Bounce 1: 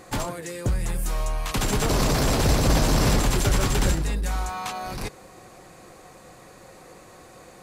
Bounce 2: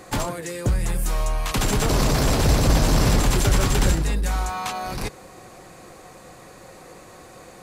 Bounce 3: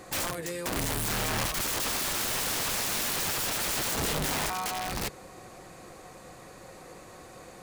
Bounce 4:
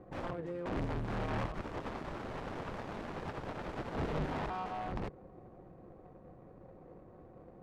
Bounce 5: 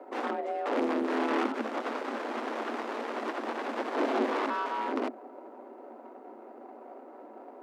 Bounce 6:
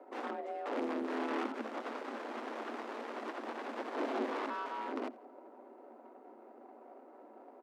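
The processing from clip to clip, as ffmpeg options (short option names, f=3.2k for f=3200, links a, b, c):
-filter_complex "[0:a]acrossover=split=160[a][b];[b]acompressor=threshold=-22dB:ratio=6[c];[a][c]amix=inputs=2:normalize=0,volume=3dB"
-af "aeval=exprs='(mod(12.6*val(0)+1,2)-1)/12.6':c=same,volume=-3.5dB"
-af "adynamicsmooth=sensitivity=1.5:basefreq=510,volume=-2.5dB"
-af "afreqshift=220,volume=7dB"
-af "aecho=1:1:85|170|255:0.0708|0.0283|0.0113,volume=-7.5dB"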